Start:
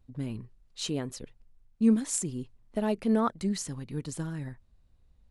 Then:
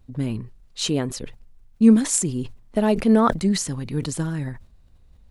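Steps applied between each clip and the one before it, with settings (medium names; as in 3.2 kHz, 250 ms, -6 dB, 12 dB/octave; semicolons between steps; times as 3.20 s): decay stretcher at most 120 dB/s; trim +9 dB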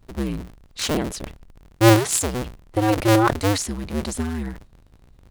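cycle switcher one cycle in 2, inverted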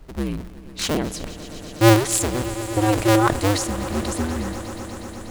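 on a send: echo with a slow build-up 121 ms, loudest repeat 5, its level -18 dB; on the sum: added noise brown -44 dBFS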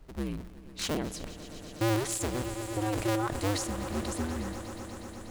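peak limiter -13 dBFS, peak gain reduction 8 dB; trim -8.5 dB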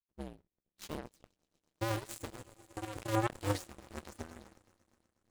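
flange 0.91 Hz, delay 8.1 ms, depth 4.5 ms, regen +51%; power-law waveshaper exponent 3; trim +7 dB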